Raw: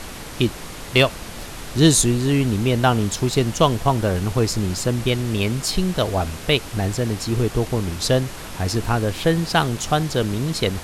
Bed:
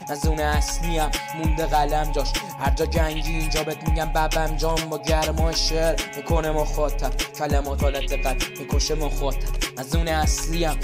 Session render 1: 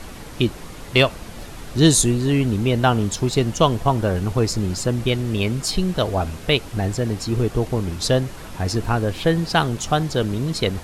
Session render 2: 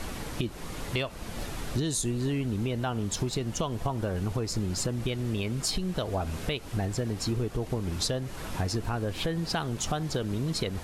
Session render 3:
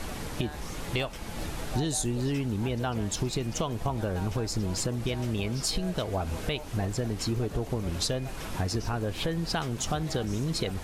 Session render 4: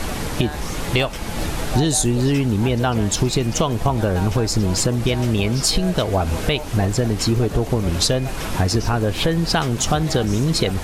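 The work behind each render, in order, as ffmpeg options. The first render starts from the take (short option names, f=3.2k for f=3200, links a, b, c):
-af "afftdn=nr=6:nf=-35"
-af "alimiter=limit=-12dB:level=0:latency=1:release=374,acompressor=threshold=-26dB:ratio=6"
-filter_complex "[1:a]volume=-20.5dB[a];[0:a][a]amix=inputs=2:normalize=0"
-af "volume=11dB"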